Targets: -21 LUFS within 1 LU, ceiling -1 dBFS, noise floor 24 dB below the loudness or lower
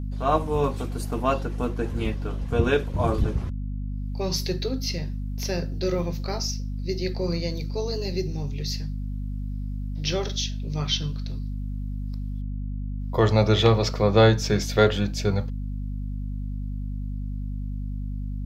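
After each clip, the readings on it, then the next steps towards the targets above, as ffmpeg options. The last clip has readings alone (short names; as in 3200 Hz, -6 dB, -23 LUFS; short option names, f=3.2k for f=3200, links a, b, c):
hum 50 Hz; harmonics up to 250 Hz; hum level -27 dBFS; loudness -26.5 LUFS; peak -4.0 dBFS; loudness target -21.0 LUFS
-> -af "bandreject=f=50:t=h:w=4,bandreject=f=100:t=h:w=4,bandreject=f=150:t=h:w=4,bandreject=f=200:t=h:w=4,bandreject=f=250:t=h:w=4"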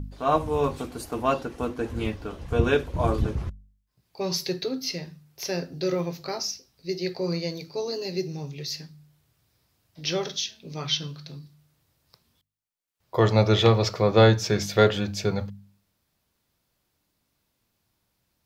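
hum none; loudness -26.0 LUFS; peak -4.5 dBFS; loudness target -21.0 LUFS
-> -af "volume=5dB,alimiter=limit=-1dB:level=0:latency=1"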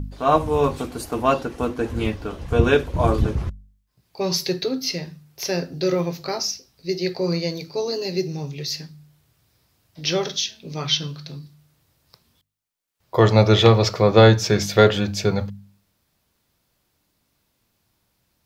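loudness -21.0 LUFS; peak -1.0 dBFS; noise floor -70 dBFS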